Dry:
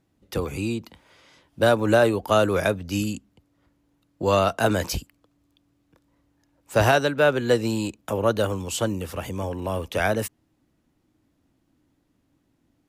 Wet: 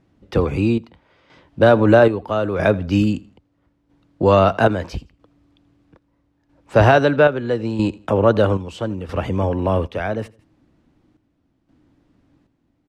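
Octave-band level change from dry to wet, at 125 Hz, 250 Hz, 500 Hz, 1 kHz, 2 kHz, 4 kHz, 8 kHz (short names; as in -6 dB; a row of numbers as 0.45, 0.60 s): +7.5 dB, +7.0 dB, +5.5 dB, +5.0 dB, +3.0 dB, -1.0 dB, under -10 dB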